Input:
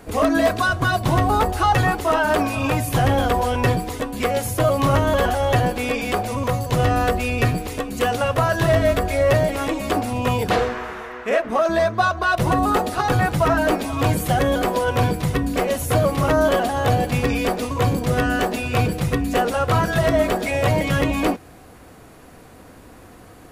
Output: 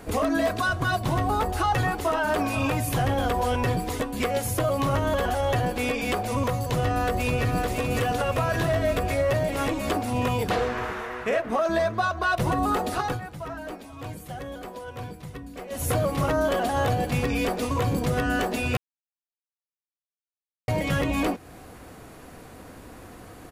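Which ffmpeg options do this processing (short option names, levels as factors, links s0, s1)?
-filter_complex "[0:a]asplit=2[s0][s1];[s1]afade=t=in:st=6.57:d=0.01,afade=t=out:st=7.56:d=0.01,aecho=0:1:560|1120|1680|2240|2800|3360|3920|4480|5040|5600:0.562341|0.365522|0.237589|0.154433|0.100381|0.0652479|0.0424112|0.0275673|0.0179187|0.0116472[s2];[s0][s2]amix=inputs=2:normalize=0,asplit=5[s3][s4][s5][s6][s7];[s3]atrim=end=13.2,asetpts=PTS-STARTPTS,afade=t=out:st=13.01:d=0.19:silence=0.133352[s8];[s4]atrim=start=13.2:end=15.7,asetpts=PTS-STARTPTS,volume=0.133[s9];[s5]atrim=start=15.7:end=18.77,asetpts=PTS-STARTPTS,afade=t=in:d=0.19:silence=0.133352,afade=t=out:st=3.066:d=0.004:c=hsin[s10];[s6]atrim=start=18.77:end=20.68,asetpts=PTS-STARTPTS,volume=0[s11];[s7]atrim=start=20.68,asetpts=PTS-STARTPTS,afade=t=in:d=0.004:c=hsin[s12];[s8][s9][s10][s11][s12]concat=n=5:v=0:a=1,alimiter=limit=0.168:level=0:latency=1:release=270"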